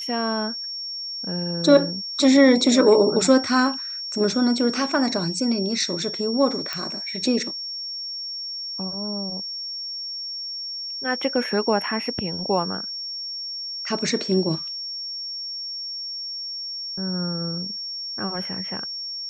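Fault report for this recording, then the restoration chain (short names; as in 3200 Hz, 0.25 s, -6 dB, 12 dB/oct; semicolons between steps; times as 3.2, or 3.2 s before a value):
tone 5500 Hz -29 dBFS
6.73 pop -13 dBFS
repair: de-click; notch 5500 Hz, Q 30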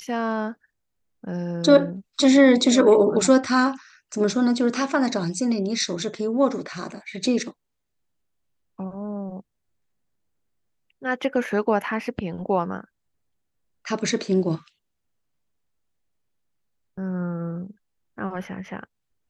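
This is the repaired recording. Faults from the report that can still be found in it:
none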